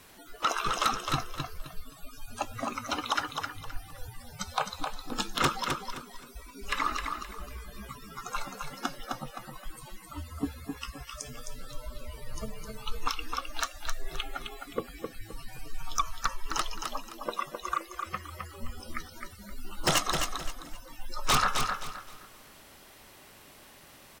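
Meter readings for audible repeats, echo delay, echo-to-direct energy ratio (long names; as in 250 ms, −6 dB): 3, 261 ms, −5.0 dB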